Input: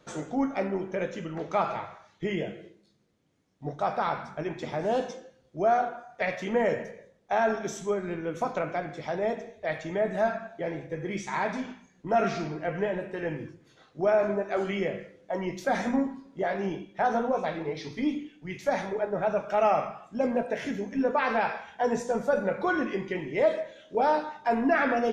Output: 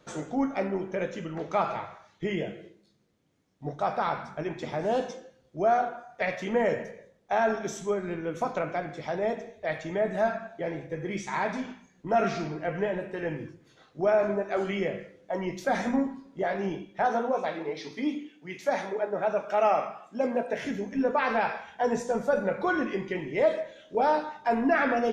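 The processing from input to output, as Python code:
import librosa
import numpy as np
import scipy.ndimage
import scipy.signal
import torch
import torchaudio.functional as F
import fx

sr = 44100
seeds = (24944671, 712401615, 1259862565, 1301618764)

y = fx.highpass(x, sr, hz=230.0, slope=12, at=(17.06, 20.53))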